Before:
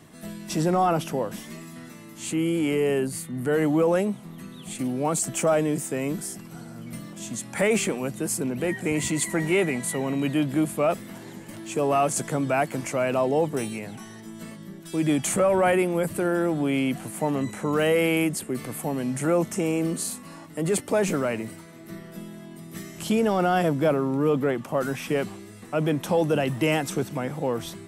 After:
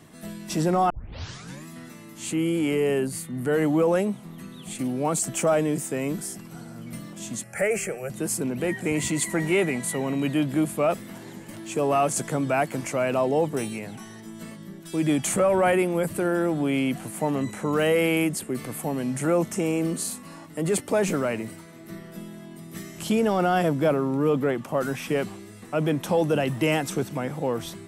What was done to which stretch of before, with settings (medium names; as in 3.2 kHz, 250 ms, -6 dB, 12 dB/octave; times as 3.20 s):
0.90 s: tape start 0.76 s
7.43–8.10 s: static phaser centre 1 kHz, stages 6